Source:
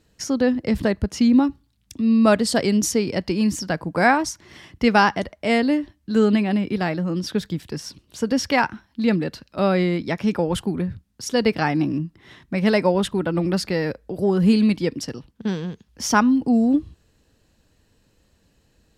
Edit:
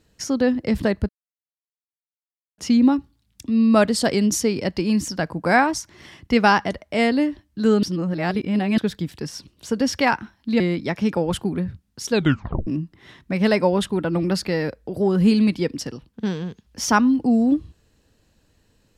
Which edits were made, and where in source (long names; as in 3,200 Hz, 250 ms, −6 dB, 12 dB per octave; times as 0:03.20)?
0:01.09: splice in silence 1.49 s
0:06.34–0:07.29: reverse
0:09.11–0:09.82: remove
0:11.32: tape stop 0.57 s